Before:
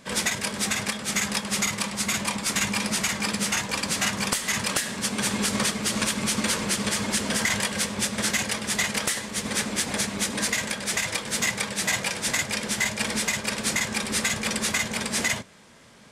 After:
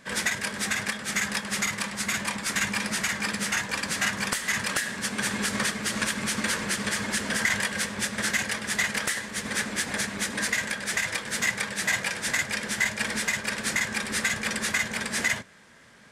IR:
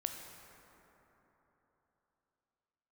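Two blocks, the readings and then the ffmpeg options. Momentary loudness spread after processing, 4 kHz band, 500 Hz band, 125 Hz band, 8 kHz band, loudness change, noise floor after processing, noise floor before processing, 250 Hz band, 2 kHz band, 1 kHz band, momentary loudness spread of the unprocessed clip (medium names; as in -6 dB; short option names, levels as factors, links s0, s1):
3 LU, -3.5 dB, -4.0 dB, -4.0 dB, -4.0 dB, -2.0 dB, -38 dBFS, -36 dBFS, -4.0 dB, +1.5 dB, -2.0 dB, 2 LU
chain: -af "equalizer=f=1700:t=o:w=0.62:g=8.5,volume=0.631"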